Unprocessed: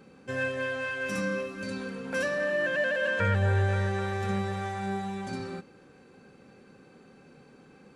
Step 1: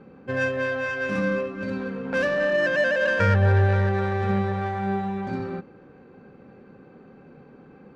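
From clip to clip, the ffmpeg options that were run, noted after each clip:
ffmpeg -i in.wav -af "adynamicsmooth=sensitivity=2:basefreq=1900,volume=6.5dB" out.wav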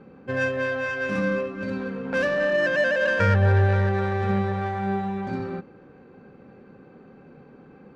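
ffmpeg -i in.wav -af anull out.wav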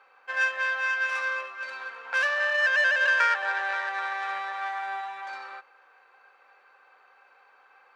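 ffmpeg -i in.wav -af "highpass=frequency=880:width=0.5412,highpass=frequency=880:width=1.3066,volume=3dB" out.wav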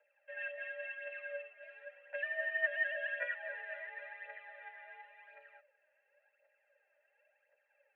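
ffmpeg -i in.wav -filter_complex "[0:a]asplit=3[link_01][link_02][link_03];[link_01]bandpass=frequency=530:width_type=q:width=8,volume=0dB[link_04];[link_02]bandpass=frequency=1840:width_type=q:width=8,volume=-6dB[link_05];[link_03]bandpass=frequency=2480:width_type=q:width=8,volume=-9dB[link_06];[link_04][link_05][link_06]amix=inputs=3:normalize=0,aphaser=in_gain=1:out_gain=1:delay=3.7:decay=0.6:speed=0.93:type=triangular,highpass=frequency=280:width_type=q:width=0.5412,highpass=frequency=280:width_type=q:width=1.307,lowpass=frequency=3100:width_type=q:width=0.5176,lowpass=frequency=3100:width_type=q:width=0.7071,lowpass=frequency=3100:width_type=q:width=1.932,afreqshift=52,volume=-5.5dB" out.wav

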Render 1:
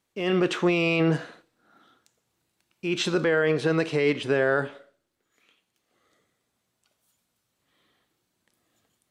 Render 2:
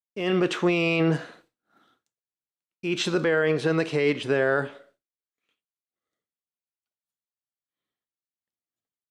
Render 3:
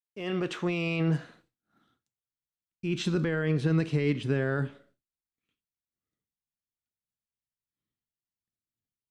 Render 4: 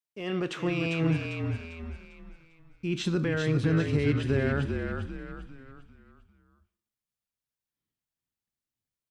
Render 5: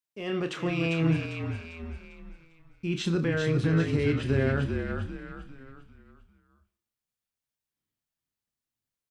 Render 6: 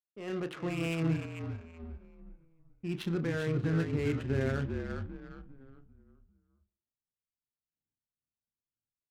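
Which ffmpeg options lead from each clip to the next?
ffmpeg -i in.wav -af "agate=range=-33dB:threshold=-54dB:ratio=3:detection=peak" out.wav
ffmpeg -i in.wav -af "asubboost=boost=7.5:cutoff=220,volume=-7.5dB" out.wav
ffmpeg -i in.wav -filter_complex "[0:a]asplit=6[link_01][link_02][link_03][link_04][link_05][link_06];[link_02]adelay=398,afreqshift=-43,volume=-5dB[link_07];[link_03]adelay=796,afreqshift=-86,volume=-12.7dB[link_08];[link_04]adelay=1194,afreqshift=-129,volume=-20.5dB[link_09];[link_05]adelay=1592,afreqshift=-172,volume=-28.2dB[link_10];[link_06]adelay=1990,afreqshift=-215,volume=-36dB[link_11];[link_01][link_07][link_08][link_09][link_10][link_11]amix=inputs=6:normalize=0" out.wav
ffmpeg -i in.wav -filter_complex "[0:a]asplit=2[link_01][link_02];[link_02]adelay=30,volume=-9dB[link_03];[link_01][link_03]amix=inputs=2:normalize=0" out.wav
ffmpeg -i in.wav -af "adynamicsmooth=sensitivity=7:basefreq=620,volume=-5.5dB" out.wav

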